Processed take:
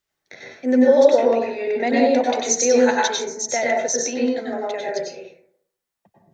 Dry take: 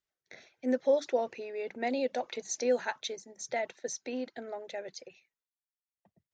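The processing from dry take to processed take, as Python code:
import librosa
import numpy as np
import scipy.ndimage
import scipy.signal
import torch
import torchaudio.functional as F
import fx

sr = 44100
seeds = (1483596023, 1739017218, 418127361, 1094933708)

y = fx.peak_eq(x, sr, hz=6100.0, db=7.0, octaves=0.66, at=(2.29, 4.64))
y = fx.rev_plate(y, sr, seeds[0], rt60_s=0.68, hf_ratio=0.35, predelay_ms=85, drr_db=-4.0)
y = y * 10.0 ** (9.0 / 20.0)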